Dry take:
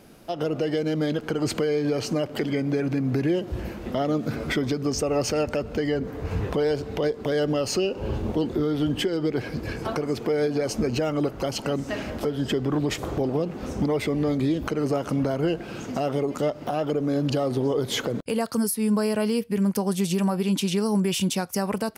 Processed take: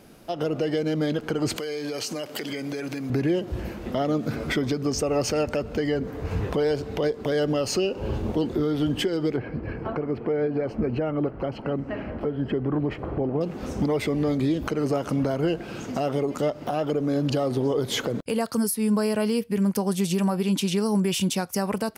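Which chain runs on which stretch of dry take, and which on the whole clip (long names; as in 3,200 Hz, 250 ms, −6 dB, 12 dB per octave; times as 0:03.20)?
0:01.56–0:03.10: high-pass filter 340 Hz 6 dB per octave + high-shelf EQ 3,000 Hz +11.5 dB + downward compressor, threshold −27 dBFS
0:09.36–0:13.41: high-frequency loss of the air 490 metres + notch filter 3,600 Hz, Q 5.2
whole clip: no processing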